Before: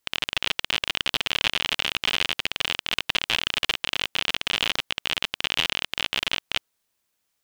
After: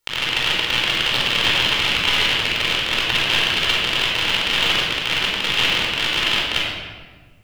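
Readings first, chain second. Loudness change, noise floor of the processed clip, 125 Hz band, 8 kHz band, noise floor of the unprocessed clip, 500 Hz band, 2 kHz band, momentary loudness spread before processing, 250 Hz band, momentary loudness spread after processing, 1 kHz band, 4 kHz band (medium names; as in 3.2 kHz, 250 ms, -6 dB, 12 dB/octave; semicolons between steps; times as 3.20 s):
+7.5 dB, -45 dBFS, +11.5 dB, +5.5 dB, -76 dBFS, +9.0 dB, +8.0 dB, 3 LU, +9.5 dB, 3 LU, +8.5 dB, +7.0 dB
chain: simulated room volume 1500 m³, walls mixed, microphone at 4.4 m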